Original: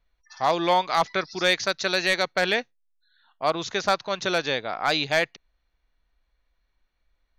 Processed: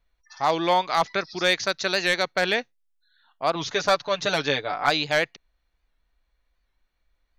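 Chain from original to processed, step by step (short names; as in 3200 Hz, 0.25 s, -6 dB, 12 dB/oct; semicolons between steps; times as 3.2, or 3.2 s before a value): 3.55–4.9 comb 6.9 ms, depth 73%; record warp 78 rpm, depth 100 cents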